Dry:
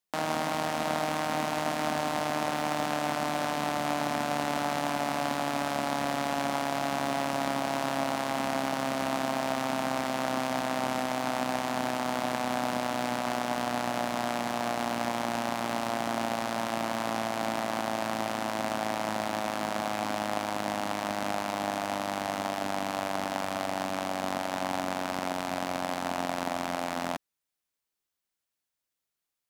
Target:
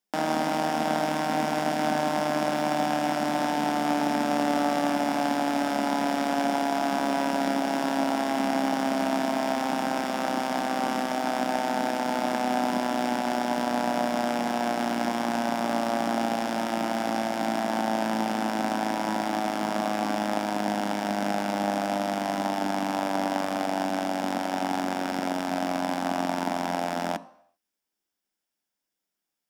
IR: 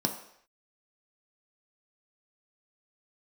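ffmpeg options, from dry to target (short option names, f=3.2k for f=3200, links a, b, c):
-filter_complex "[0:a]asplit=2[a][b];[1:a]atrim=start_sample=2205,lowpass=8.6k[c];[b][c]afir=irnorm=-1:irlink=0,volume=-13dB[d];[a][d]amix=inputs=2:normalize=0"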